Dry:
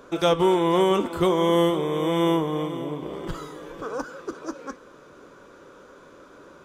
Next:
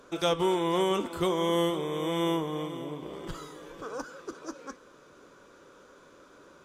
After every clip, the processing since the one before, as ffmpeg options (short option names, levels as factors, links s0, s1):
-af "equalizer=f=7300:t=o:w=2.9:g=5.5,volume=0.447"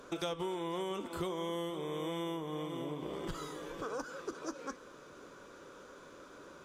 -af "acompressor=threshold=0.0141:ratio=5,volume=1.19"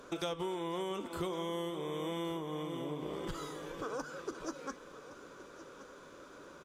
-af "aecho=1:1:1117:0.168"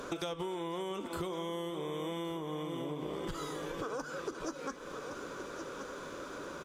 -af "acompressor=threshold=0.00398:ratio=3,volume=3.16"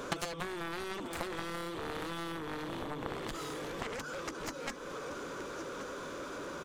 -af "aeval=exprs='0.0631*(cos(1*acos(clip(val(0)/0.0631,-1,1)))-cos(1*PI/2))+0.0282*(cos(3*acos(clip(val(0)/0.0631,-1,1)))-cos(3*PI/2))+0.00158*(cos(7*acos(clip(val(0)/0.0631,-1,1)))-cos(7*PI/2))':c=same,volume=2.82"